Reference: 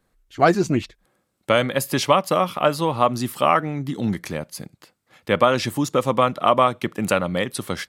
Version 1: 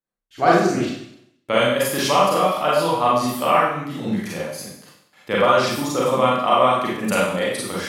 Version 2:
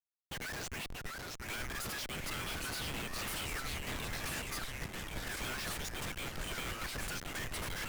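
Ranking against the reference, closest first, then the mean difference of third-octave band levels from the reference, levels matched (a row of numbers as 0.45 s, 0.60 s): 1, 2; 8.0 dB, 16.5 dB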